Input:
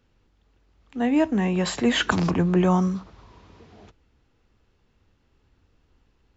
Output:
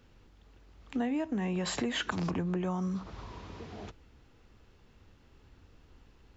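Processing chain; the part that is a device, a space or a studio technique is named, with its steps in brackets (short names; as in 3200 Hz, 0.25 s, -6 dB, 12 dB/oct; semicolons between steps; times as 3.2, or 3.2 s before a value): serial compression, leveller first (compressor 2:1, threshold -23 dBFS, peak gain reduction 4.5 dB; compressor 8:1, threshold -35 dBFS, peak gain reduction 15.5 dB); gain +5 dB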